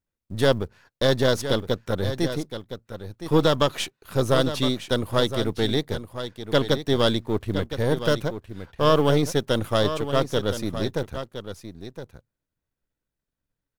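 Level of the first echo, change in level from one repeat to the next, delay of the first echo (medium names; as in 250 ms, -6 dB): -10.5 dB, no regular repeats, 1015 ms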